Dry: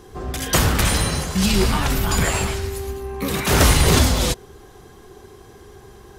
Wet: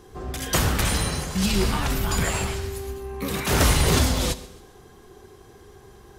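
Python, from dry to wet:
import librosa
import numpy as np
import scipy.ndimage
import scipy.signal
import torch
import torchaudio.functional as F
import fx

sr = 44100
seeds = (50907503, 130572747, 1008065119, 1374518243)

p1 = x + fx.echo_feedback(x, sr, ms=132, feedback_pct=42, wet_db=-21.0, dry=0)
p2 = fx.rev_schroeder(p1, sr, rt60_s=0.86, comb_ms=31, drr_db=16.0)
y = p2 * librosa.db_to_amplitude(-4.5)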